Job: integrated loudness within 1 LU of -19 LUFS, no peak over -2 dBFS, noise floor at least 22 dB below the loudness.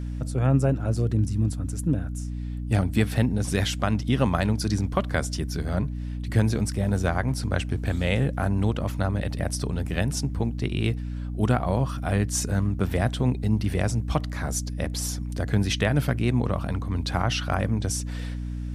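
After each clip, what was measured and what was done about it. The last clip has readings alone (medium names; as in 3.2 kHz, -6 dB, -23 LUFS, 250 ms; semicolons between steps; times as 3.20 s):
hum 60 Hz; highest harmonic 300 Hz; hum level -29 dBFS; loudness -26.0 LUFS; peak level -7.5 dBFS; loudness target -19.0 LUFS
-> hum notches 60/120/180/240/300 Hz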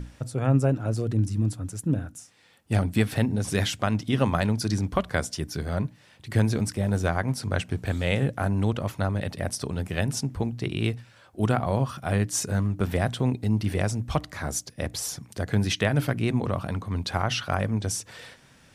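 hum not found; loudness -27.0 LUFS; peak level -8.5 dBFS; loudness target -19.0 LUFS
-> trim +8 dB; peak limiter -2 dBFS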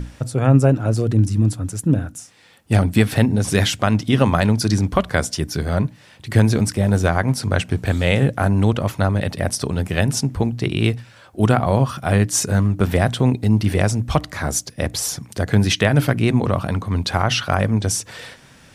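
loudness -19.0 LUFS; peak level -2.0 dBFS; noise floor -48 dBFS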